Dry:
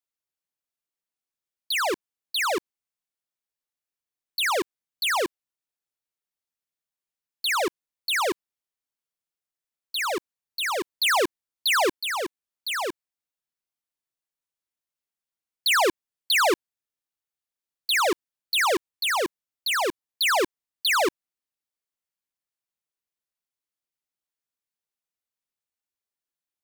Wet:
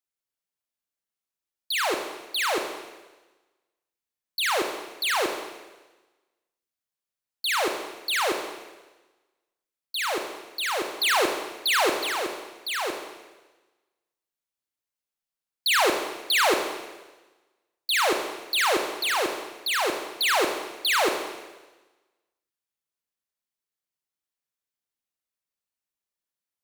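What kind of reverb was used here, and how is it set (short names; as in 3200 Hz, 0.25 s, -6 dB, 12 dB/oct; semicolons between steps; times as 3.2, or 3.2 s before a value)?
Schroeder reverb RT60 1.2 s, combs from 29 ms, DRR 4 dB; gain -1.5 dB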